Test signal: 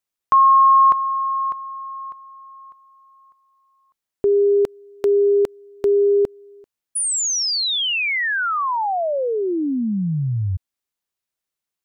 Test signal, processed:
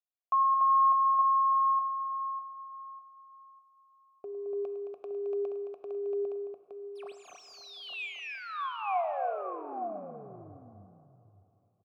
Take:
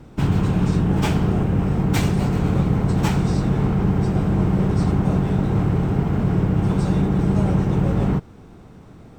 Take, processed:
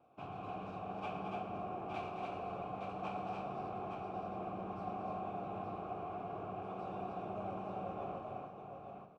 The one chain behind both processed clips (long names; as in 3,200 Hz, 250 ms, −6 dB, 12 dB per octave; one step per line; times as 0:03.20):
running median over 5 samples
formant filter a
parametric band 99 Hz +6.5 dB 0.29 octaves
multi-tap delay 106/218/290/866 ms −13.5/−8.5/−3.5/−6 dB
dense smooth reverb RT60 3.1 s, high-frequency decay 0.55×, DRR 9.5 dB
level −6.5 dB